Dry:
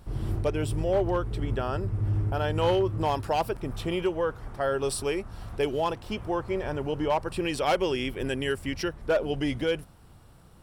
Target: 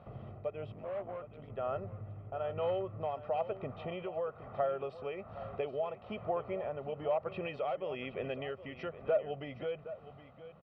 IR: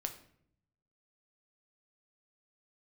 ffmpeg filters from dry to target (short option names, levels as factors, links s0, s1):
-filter_complex "[0:a]aecho=1:1:1.6:0.55,acompressor=threshold=0.02:ratio=4,tremolo=f=1.1:d=0.4,asettb=1/sr,asplit=3[s0][s1][s2];[s0]atrim=end=0.724[s3];[s1]atrim=start=0.72:end=1.5,asetpts=PTS-STARTPTS,afade=t=in:d=0.004:c=qsin,afade=t=out:st=0.776:d=0.004:c=qsin,aeval=exprs='(tanh(89.1*val(0)+0.5)-tanh(0.5))/89.1':c=same[s4];[s2]atrim=start=1.496[s5];[s3][s4]acrossfade=d=0.004:c1=hsin:c2=qsin[s6];[s6][s5]acrossfade=d=0.004:c1=qsin:c2=hsin,highpass=180,equalizer=f=320:t=q:w=4:g=-5,equalizer=f=640:t=q:w=4:g=5,equalizer=f=1700:t=q:w=4:g=-9,lowpass=f=2500:w=0.5412,lowpass=f=2500:w=1.3066,aecho=1:1:768:0.2,volume=1.19"